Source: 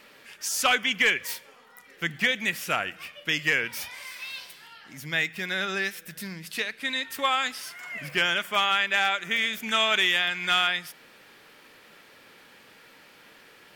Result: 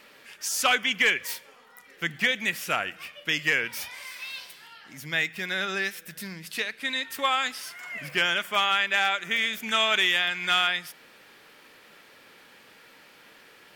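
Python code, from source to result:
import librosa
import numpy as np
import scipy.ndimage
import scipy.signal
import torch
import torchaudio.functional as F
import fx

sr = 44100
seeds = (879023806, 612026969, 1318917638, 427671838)

y = fx.low_shelf(x, sr, hz=200.0, db=-3.0)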